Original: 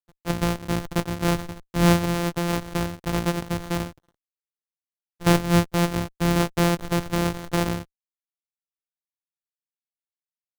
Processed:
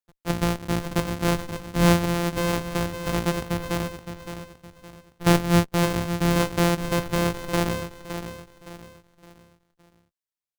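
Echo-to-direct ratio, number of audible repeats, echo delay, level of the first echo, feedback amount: -9.0 dB, 3, 565 ms, -9.5 dB, 37%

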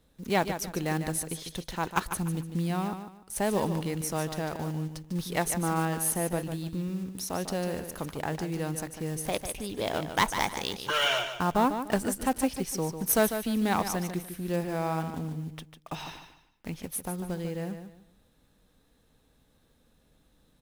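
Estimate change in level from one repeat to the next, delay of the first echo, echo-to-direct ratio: -11.0 dB, 148 ms, -8.5 dB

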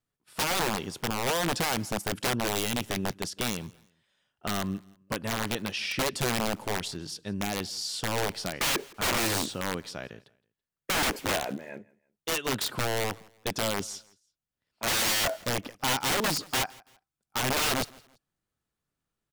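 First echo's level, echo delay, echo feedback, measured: -24.0 dB, 166 ms, 33%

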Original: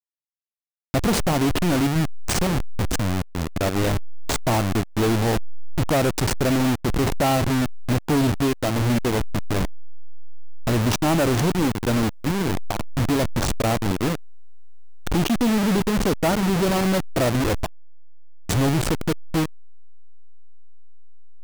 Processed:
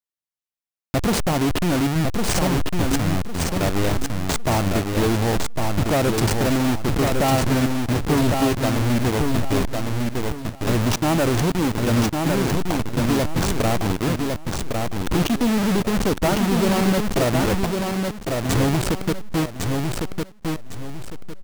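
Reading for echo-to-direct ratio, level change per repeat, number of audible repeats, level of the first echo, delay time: -3.5 dB, -10.5 dB, 3, -4.0 dB, 1105 ms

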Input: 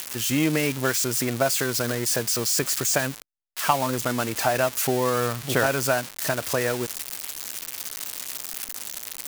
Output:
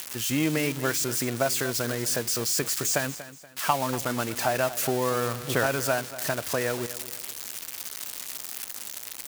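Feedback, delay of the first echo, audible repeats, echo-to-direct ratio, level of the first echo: 35%, 238 ms, 3, -14.5 dB, -15.0 dB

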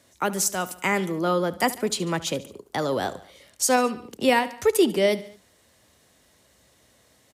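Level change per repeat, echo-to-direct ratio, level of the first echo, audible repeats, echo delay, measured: -4.5 dB, -16.5 dB, -18.0 dB, 3, 72 ms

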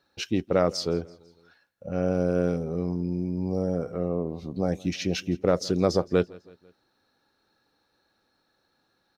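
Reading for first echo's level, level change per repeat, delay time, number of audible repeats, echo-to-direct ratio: -23.5 dB, -5.5 dB, 165 ms, 3, -22.0 dB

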